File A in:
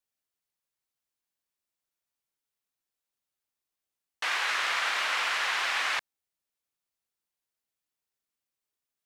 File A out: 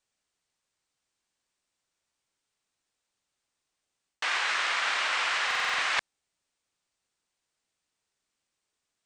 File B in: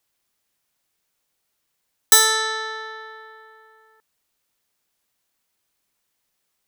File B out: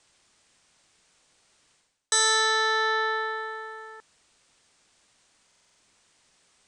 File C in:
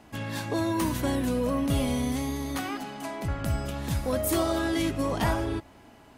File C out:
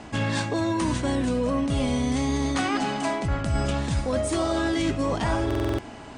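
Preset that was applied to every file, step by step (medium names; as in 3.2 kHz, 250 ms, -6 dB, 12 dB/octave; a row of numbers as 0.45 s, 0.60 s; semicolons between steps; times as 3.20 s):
steep low-pass 9.2 kHz 72 dB/octave; reverse; compression 12:1, threshold -33 dBFS; reverse; buffer glitch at 5.46 s, samples 2048, times 6; peak normalisation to -12 dBFS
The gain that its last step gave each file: +8.5 dB, +13.0 dB, +12.0 dB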